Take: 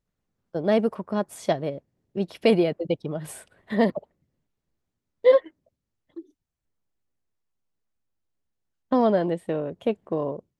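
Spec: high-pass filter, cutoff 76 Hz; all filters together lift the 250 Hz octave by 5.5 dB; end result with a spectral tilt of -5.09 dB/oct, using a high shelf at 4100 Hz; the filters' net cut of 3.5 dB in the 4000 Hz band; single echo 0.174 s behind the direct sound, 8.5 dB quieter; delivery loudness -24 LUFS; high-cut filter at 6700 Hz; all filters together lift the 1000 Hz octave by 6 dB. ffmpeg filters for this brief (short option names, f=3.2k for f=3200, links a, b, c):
-af "highpass=76,lowpass=6.7k,equalizer=f=250:t=o:g=6.5,equalizer=f=1k:t=o:g=8,equalizer=f=4k:t=o:g=-3.5,highshelf=f=4.1k:g=-3.5,aecho=1:1:174:0.376,volume=-3.5dB"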